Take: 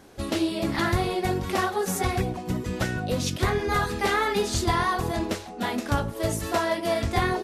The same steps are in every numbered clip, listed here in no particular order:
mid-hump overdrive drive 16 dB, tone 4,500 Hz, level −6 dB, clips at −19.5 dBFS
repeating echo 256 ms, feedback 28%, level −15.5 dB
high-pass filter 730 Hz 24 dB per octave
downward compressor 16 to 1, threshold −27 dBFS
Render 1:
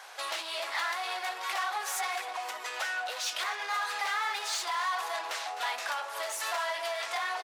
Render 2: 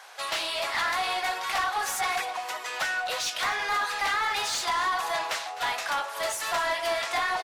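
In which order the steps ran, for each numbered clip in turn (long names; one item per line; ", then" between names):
mid-hump overdrive, then repeating echo, then downward compressor, then high-pass filter
high-pass filter, then downward compressor, then mid-hump overdrive, then repeating echo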